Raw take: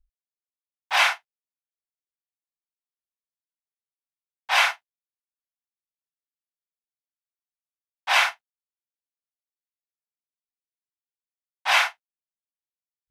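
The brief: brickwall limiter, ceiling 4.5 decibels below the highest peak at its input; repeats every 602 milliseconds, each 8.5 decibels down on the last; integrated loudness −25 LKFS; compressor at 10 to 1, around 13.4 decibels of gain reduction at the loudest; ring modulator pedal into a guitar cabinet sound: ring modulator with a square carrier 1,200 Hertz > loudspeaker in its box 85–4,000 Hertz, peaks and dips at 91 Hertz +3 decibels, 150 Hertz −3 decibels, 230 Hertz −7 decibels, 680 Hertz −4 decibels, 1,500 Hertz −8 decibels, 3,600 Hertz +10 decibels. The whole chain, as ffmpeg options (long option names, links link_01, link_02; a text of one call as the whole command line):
ffmpeg -i in.wav -af "acompressor=threshold=-28dB:ratio=10,alimiter=limit=-22.5dB:level=0:latency=1,aecho=1:1:602|1204|1806|2408:0.376|0.143|0.0543|0.0206,aeval=exprs='val(0)*sgn(sin(2*PI*1200*n/s))':channel_layout=same,highpass=85,equalizer=frequency=91:width_type=q:width=4:gain=3,equalizer=frequency=150:width_type=q:width=4:gain=-3,equalizer=frequency=230:width_type=q:width=4:gain=-7,equalizer=frequency=680:width_type=q:width=4:gain=-4,equalizer=frequency=1500:width_type=q:width=4:gain=-8,equalizer=frequency=3600:width_type=q:width=4:gain=10,lowpass=frequency=4000:width=0.5412,lowpass=frequency=4000:width=1.3066,volume=12.5dB" out.wav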